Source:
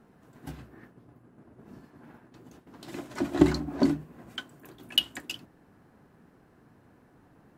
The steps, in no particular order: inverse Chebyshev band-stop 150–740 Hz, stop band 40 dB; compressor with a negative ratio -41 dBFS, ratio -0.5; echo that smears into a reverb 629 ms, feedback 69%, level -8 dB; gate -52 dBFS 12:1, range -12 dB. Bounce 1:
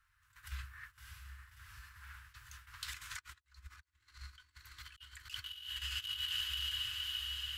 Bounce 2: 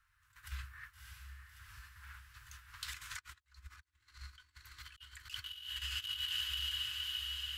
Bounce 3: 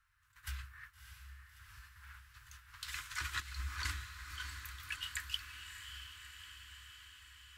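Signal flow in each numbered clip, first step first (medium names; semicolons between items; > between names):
echo that smears into a reverb > gate > compressor with a negative ratio > inverse Chebyshev band-stop; gate > echo that smears into a reverb > compressor with a negative ratio > inverse Chebyshev band-stop; gate > inverse Chebyshev band-stop > compressor with a negative ratio > echo that smears into a reverb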